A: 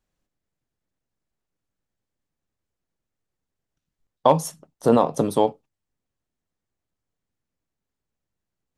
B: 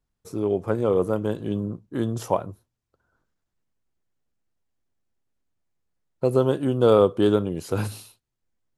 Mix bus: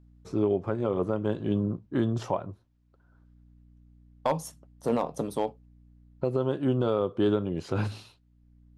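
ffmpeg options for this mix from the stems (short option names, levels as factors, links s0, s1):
-filter_complex "[0:a]asoftclip=type=hard:threshold=0.398,aeval=exprs='val(0)+0.00562*(sin(2*PI*60*n/s)+sin(2*PI*2*60*n/s)/2+sin(2*PI*3*60*n/s)/3+sin(2*PI*4*60*n/s)/4+sin(2*PI*5*60*n/s)/5)':c=same,volume=0.335[s0];[1:a]lowpass=4200,bandreject=f=470:w=12,volume=1.19,asplit=2[s1][s2];[s2]apad=whole_len=386868[s3];[s0][s3]sidechaincompress=threshold=0.0141:ratio=8:attack=16:release=666[s4];[s4][s1]amix=inputs=2:normalize=0,alimiter=limit=0.168:level=0:latency=1:release=370"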